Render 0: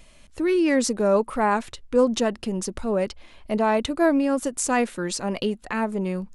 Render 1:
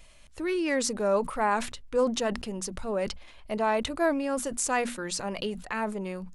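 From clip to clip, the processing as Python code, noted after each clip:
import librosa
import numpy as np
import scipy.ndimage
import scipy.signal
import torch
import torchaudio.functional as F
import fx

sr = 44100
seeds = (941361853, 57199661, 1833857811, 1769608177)

y = fx.peak_eq(x, sr, hz=260.0, db=-6.5, octaves=1.6)
y = fx.hum_notches(y, sr, base_hz=60, count=4)
y = fx.sustainer(y, sr, db_per_s=98.0)
y = y * librosa.db_to_amplitude(-3.0)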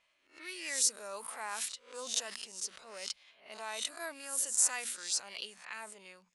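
y = fx.spec_swells(x, sr, rise_s=0.41)
y = fx.env_lowpass(y, sr, base_hz=1600.0, full_db=-24.0)
y = np.diff(y, prepend=0.0)
y = y * librosa.db_to_amplitude(1.5)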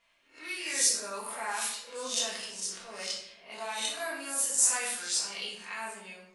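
y = fx.room_shoebox(x, sr, seeds[0], volume_m3=200.0, walls='mixed', distance_m=1.7)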